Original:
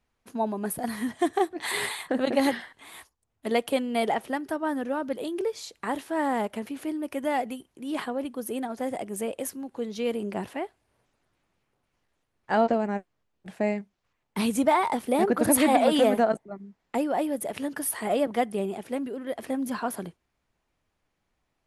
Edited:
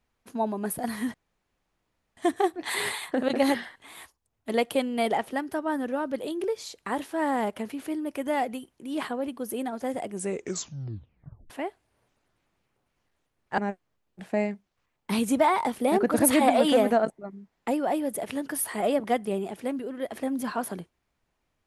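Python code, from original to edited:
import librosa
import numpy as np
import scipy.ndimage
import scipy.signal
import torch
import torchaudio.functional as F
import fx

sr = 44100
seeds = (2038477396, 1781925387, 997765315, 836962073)

y = fx.edit(x, sr, fx.insert_room_tone(at_s=1.14, length_s=1.03),
    fx.tape_stop(start_s=9.07, length_s=1.4),
    fx.cut(start_s=12.55, length_s=0.3), tone=tone)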